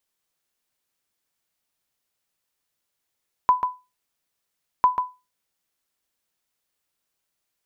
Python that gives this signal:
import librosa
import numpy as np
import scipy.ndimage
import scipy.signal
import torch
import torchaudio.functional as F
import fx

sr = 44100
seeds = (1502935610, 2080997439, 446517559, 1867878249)

y = fx.sonar_ping(sr, hz=1000.0, decay_s=0.26, every_s=1.35, pings=2, echo_s=0.14, echo_db=-7.5, level_db=-8.5)